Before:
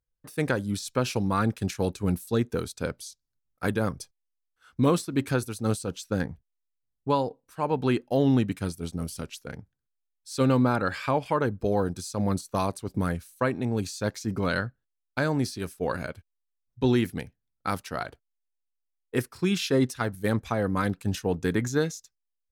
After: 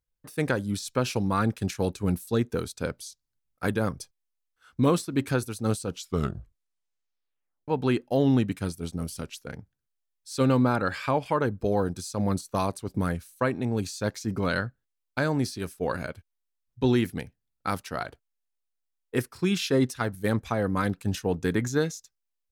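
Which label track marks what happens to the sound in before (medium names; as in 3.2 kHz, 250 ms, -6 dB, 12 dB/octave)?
5.890000	5.890000	tape stop 1.79 s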